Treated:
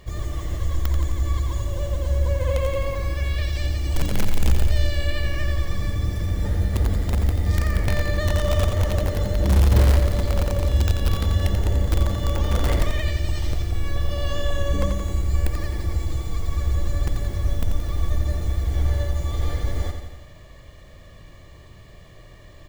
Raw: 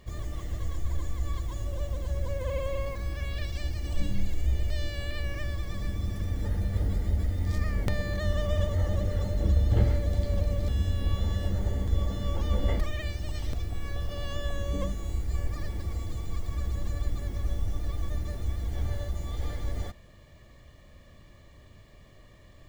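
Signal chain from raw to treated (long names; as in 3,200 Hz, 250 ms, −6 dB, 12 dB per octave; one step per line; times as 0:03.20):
parametric band 230 Hz −6.5 dB 0.29 octaves
in parallel at −7 dB: wrap-around overflow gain 18.5 dB
on the sum: repeating echo 87 ms, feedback 60%, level −7 dB
level +3.5 dB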